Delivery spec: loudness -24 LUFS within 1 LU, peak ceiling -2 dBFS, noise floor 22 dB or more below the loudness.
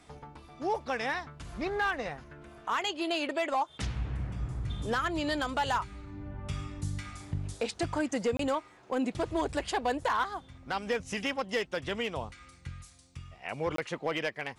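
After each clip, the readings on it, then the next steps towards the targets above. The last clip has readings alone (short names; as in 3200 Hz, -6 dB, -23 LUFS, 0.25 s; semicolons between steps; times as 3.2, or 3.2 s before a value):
clipped 0.5%; flat tops at -22.5 dBFS; dropouts 2; longest dropout 23 ms; loudness -33.0 LUFS; peak -22.5 dBFS; loudness target -24.0 LUFS
-> clip repair -22.5 dBFS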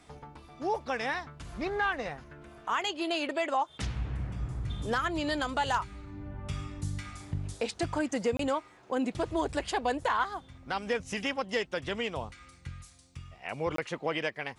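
clipped 0.0%; dropouts 2; longest dropout 23 ms
-> interpolate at 8.37/13.76, 23 ms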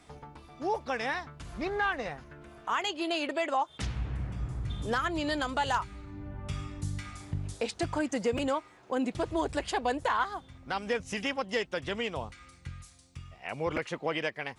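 dropouts 0; loudness -33.0 LUFS; peak -15.0 dBFS; loudness target -24.0 LUFS
-> gain +9 dB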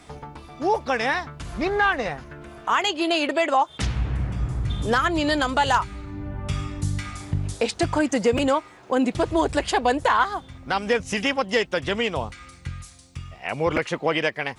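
loudness -24.0 LUFS; peak -6.0 dBFS; noise floor -48 dBFS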